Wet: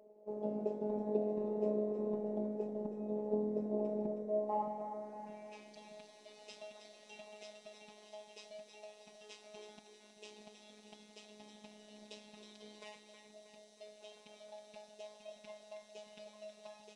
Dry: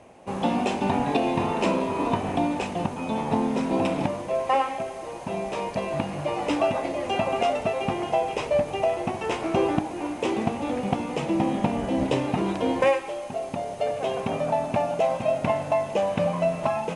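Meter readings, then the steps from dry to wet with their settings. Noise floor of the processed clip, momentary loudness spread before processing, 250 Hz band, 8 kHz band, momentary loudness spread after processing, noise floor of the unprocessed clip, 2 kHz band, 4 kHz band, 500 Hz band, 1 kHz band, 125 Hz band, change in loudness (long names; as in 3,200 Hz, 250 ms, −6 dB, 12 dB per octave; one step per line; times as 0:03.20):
−62 dBFS, 5 LU, −16.5 dB, −18.0 dB, 20 LU, −36 dBFS, −26.5 dB, −19.0 dB, −15.5 dB, −22.0 dB, −21.5 dB, −13.5 dB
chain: flat-topped bell 1,800 Hz −13.5 dB 2.3 octaves
band-pass filter sweep 470 Hz → 3,500 Hz, 0:04.28–0:05.79
phases set to zero 211 Hz
echo with a time of its own for lows and highs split 320 Hz, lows 620 ms, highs 317 ms, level −8 dB
level −2.5 dB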